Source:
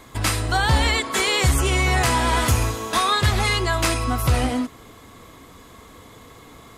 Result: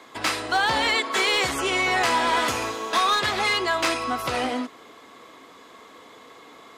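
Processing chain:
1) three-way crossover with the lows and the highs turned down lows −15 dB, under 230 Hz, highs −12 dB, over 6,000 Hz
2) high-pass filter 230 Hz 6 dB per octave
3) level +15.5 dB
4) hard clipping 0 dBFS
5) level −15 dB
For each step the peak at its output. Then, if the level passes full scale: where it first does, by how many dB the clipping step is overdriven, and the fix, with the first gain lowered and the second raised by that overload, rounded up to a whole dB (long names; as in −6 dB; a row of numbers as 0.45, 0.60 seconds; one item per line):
−8.5, −8.5, +7.0, 0.0, −15.0 dBFS
step 3, 7.0 dB
step 3 +8.5 dB, step 5 −8 dB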